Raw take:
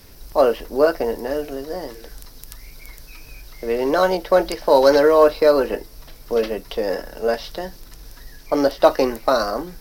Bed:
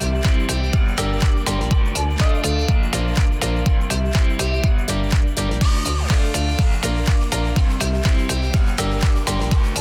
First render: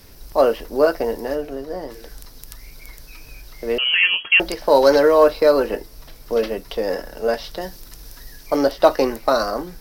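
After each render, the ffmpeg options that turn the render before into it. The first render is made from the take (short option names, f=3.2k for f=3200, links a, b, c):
-filter_complex "[0:a]asplit=3[a][b][c];[a]afade=t=out:st=1.34:d=0.02[d];[b]highshelf=f=2.8k:g=-8,afade=t=in:st=1.34:d=0.02,afade=t=out:st=1.9:d=0.02[e];[c]afade=t=in:st=1.9:d=0.02[f];[d][e][f]amix=inputs=3:normalize=0,asettb=1/sr,asplit=3[g][h][i];[g]atrim=end=3.784[j];[h]atrim=start=3.78:end=4.4,asetpts=PTS-STARTPTS,afade=t=in:d=0.004:c=qsin,afade=t=out:st=0.616:d=0.004:c=qsin,lowpass=f=2.8k:t=q:w=0.5098,lowpass=f=2.8k:t=q:w=0.6013,lowpass=f=2.8k:t=q:w=0.9,lowpass=f=2.8k:t=q:w=2.563,afreqshift=-3300[k];[i]atrim=start=4.396[l];[j][k]acrossfade=d=0.004:c1=hsin:c2=qsin[m];[m][l]acrossfade=d=0.004:c1=qsin:c2=hsin,asettb=1/sr,asplit=3[n][o][p];[n]atrim=end=7.614[q];[o]atrim=start=7.61:end=8.57,asetpts=PTS-STARTPTS,afade=t=in:d=0.004:c=qsin,afade=t=out:st=0.956:d=0.004:c=qsin,highshelf=f=4.7k:g=5.5[r];[p]atrim=start=8.566[s];[q][r]acrossfade=d=0.004:c1=hsin:c2=qsin[t];[t][s]acrossfade=d=0.004:c1=qsin:c2=hsin"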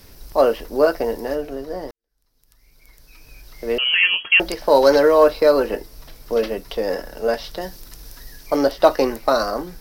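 -filter_complex "[0:a]asplit=2[a][b];[a]atrim=end=1.91,asetpts=PTS-STARTPTS,afade=t=out:st=1.906:d=0.004:c=hsin[c];[b]atrim=start=1.91,asetpts=PTS-STARTPTS,afade=t=in:d=1.81:c=qua[d];[c][d]concat=n=2:v=0:a=1"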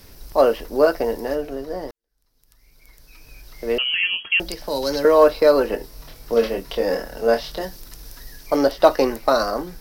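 -filter_complex "[0:a]asettb=1/sr,asplit=3[a][b][c];[a]atrim=end=3.824[d];[b]atrim=start=3.82:end=5.05,asetpts=PTS-STARTPTS,afade=t=in:d=0.004:c=qsin,afade=t=out:st=1.226:d=0.004:c=qsin,acrossover=split=250|3000[e][f][g];[f]acompressor=threshold=-47dB:ratio=1.5:attack=3.2:release=140:knee=2.83:detection=peak[h];[e][h][g]amix=inputs=3:normalize=0[i];[c]atrim=start=5.046[j];[d][i]acrossfade=d=0.004:c1=hsin:c2=qsin[k];[k][j]acrossfade=d=0.004:c1=qsin:c2=hsin,asettb=1/sr,asplit=3[l][m][n];[l]atrim=end=5.774[o];[m]atrim=start=5.77:end=7.65,asetpts=PTS-STARTPTS,afade=t=in:d=0.004:c=qsin,afade=t=out:st=1.876:d=0.004:c=qsin,asplit=2[p][q];[q]adelay=26,volume=-4.5dB[r];[p][r]amix=inputs=2:normalize=0,atrim=end_sample=82908[s];[n]atrim=start=7.646[t];[o][s]acrossfade=d=0.004:c1=hsin:c2=qsin[u];[u][t]acrossfade=d=0.004:c1=qsin:c2=hsin"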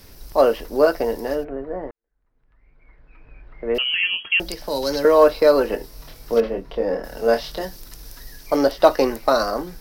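-filter_complex "[0:a]asplit=3[a][b][c];[a]afade=t=out:st=1.43:d=0.02[d];[b]lowpass=f=2.1k:w=0.5412,lowpass=f=2.1k:w=1.3066,afade=t=in:st=1.43:d=0.02,afade=t=out:st=3.74:d=0.02[e];[c]afade=t=in:st=3.74:d=0.02[f];[d][e][f]amix=inputs=3:normalize=0,asettb=1/sr,asplit=3[g][h][i];[g]atrim=end=6.404[j];[h]atrim=start=6.4:end=7.04,asetpts=PTS-STARTPTS,afade=t=in:d=0.004:c=qsin,afade=t=out:st=0.636:d=0.004:c=qsin,lowpass=f=1k:p=1[k];[i]atrim=start=7.036[l];[j][k]acrossfade=d=0.004:c1=hsin:c2=qsin[m];[m][l]acrossfade=d=0.004:c1=qsin:c2=hsin"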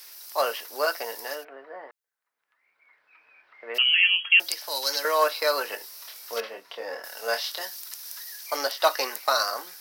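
-af "highpass=1.1k,highshelf=f=4.2k:g=6.5"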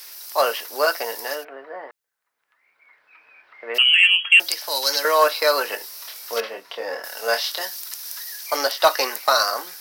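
-af "acontrast=47"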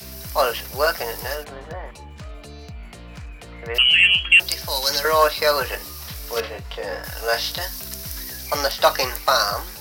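-filter_complex "[1:a]volume=-20dB[a];[0:a][a]amix=inputs=2:normalize=0"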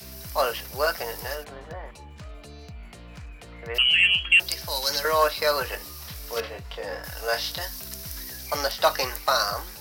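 -af "volume=-4.5dB"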